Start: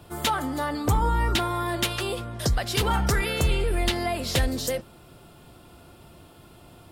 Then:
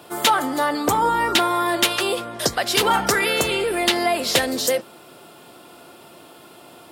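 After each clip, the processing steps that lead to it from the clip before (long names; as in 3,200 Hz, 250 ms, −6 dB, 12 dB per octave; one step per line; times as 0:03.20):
high-pass filter 300 Hz 12 dB per octave
level +8 dB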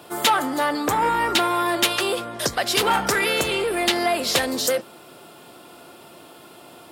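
saturating transformer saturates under 2,000 Hz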